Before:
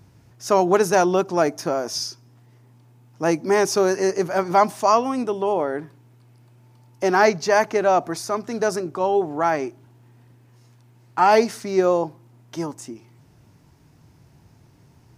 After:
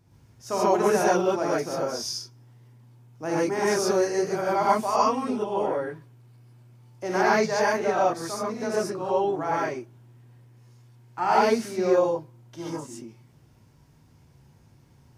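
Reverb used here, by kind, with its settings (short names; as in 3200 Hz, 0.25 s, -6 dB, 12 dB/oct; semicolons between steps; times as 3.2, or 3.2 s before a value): non-linear reverb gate 0.16 s rising, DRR -7 dB; gain -11.5 dB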